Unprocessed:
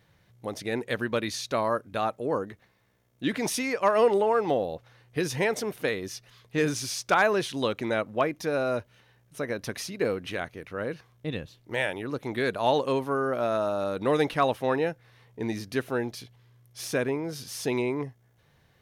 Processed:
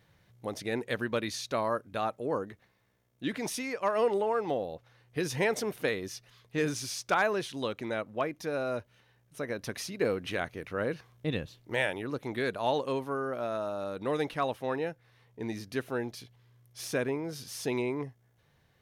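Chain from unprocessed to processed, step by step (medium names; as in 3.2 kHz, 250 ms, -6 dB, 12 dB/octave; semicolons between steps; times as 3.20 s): gain riding 2 s; trim -5 dB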